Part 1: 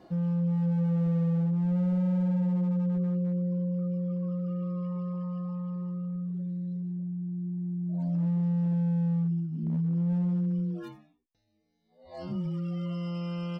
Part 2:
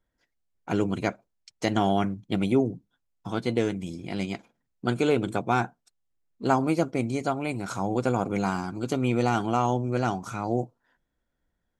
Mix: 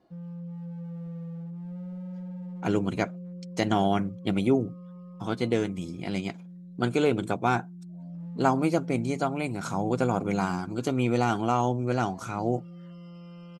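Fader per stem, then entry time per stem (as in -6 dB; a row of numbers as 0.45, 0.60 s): -11.5, -0.5 dB; 0.00, 1.95 s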